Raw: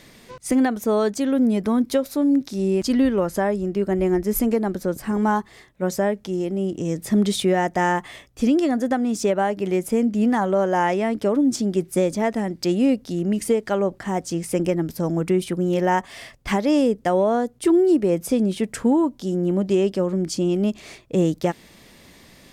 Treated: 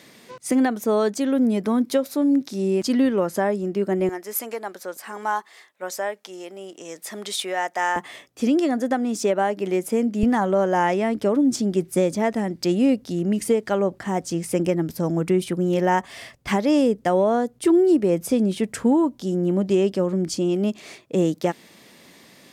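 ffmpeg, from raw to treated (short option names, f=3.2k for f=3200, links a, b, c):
-af "asetnsamples=n=441:p=0,asendcmd='4.09 highpass f 720;7.96 highpass f 210;10.23 highpass f 66;20.34 highpass f 170',highpass=170"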